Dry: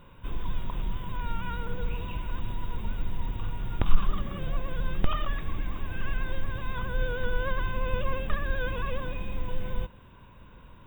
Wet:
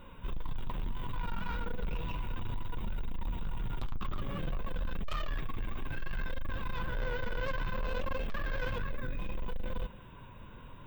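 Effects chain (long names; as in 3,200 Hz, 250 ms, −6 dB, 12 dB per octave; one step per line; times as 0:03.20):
0:08.78–0:09.19: phaser with its sweep stopped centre 3,000 Hz, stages 6
soft clipping −32 dBFS, distortion −4 dB
flanger 0.62 Hz, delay 3.3 ms, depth 6 ms, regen −42%
level +5.5 dB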